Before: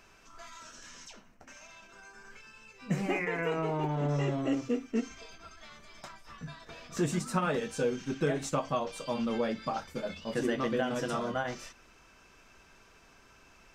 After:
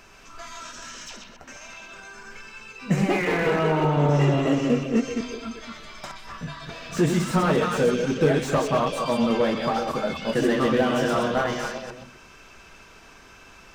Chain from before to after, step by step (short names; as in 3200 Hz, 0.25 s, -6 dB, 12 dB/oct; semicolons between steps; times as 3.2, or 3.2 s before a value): reverse delay 0.124 s, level -6 dB; delay with a stepping band-pass 0.128 s, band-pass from 3200 Hz, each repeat -1.4 oct, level -2 dB; slew limiter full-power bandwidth 41 Hz; gain +8.5 dB